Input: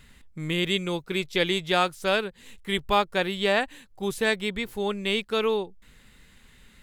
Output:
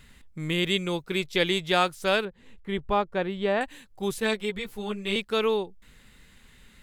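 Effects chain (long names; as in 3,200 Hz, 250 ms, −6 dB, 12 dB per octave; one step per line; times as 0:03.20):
0:02.25–0:03.61: low-pass filter 1,000 Hz 6 dB per octave
0:04.20–0:05.16: string-ensemble chorus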